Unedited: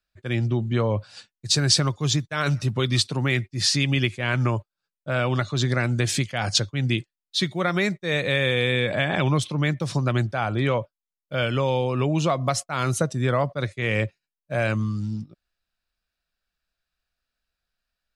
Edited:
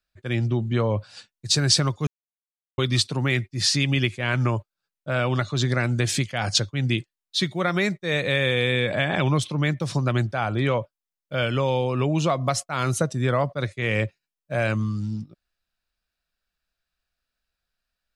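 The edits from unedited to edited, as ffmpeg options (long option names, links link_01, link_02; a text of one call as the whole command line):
ffmpeg -i in.wav -filter_complex "[0:a]asplit=3[link_01][link_02][link_03];[link_01]atrim=end=2.07,asetpts=PTS-STARTPTS,afade=type=out:start_time=2.066:duration=0.004:curve=hsin[link_04];[link_02]atrim=start=2.07:end=2.78,asetpts=PTS-STARTPTS,volume=0[link_05];[link_03]atrim=start=2.78,asetpts=PTS-STARTPTS,afade=type=in:duration=0.004:curve=hsin[link_06];[link_04][link_05][link_06]concat=n=3:v=0:a=1" out.wav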